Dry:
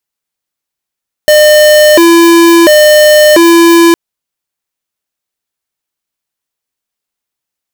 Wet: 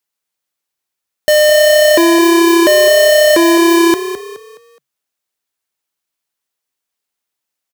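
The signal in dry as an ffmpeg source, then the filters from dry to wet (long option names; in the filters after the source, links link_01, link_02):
-f lavfi -i "aevalsrc='0.668*(2*lt(mod((471*t+134/0.72*(0.5-abs(mod(0.72*t,1)-0.5))),1),0.5)-1)':duration=2.66:sample_rate=44100"
-filter_complex "[0:a]lowshelf=frequency=220:gain=-7,asoftclip=type=tanh:threshold=-7dB,asplit=5[link_01][link_02][link_03][link_04][link_05];[link_02]adelay=210,afreqshift=33,volume=-11.5dB[link_06];[link_03]adelay=420,afreqshift=66,volume=-19.9dB[link_07];[link_04]adelay=630,afreqshift=99,volume=-28.3dB[link_08];[link_05]adelay=840,afreqshift=132,volume=-36.7dB[link_09];[link_01][link_06][link_07][link_08][link_09]amix=inputs=5:normalize=0"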